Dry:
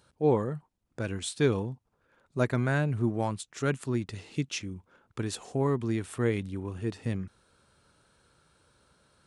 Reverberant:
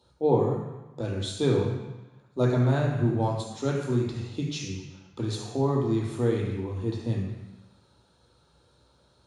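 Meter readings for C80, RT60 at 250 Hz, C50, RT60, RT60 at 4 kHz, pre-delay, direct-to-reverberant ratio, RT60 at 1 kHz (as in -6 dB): 5.0 dB, 1.1 s, 3.0 dB, 1.0 s, 1.1 s, 3 ms, -2.0 dB, 1.1 s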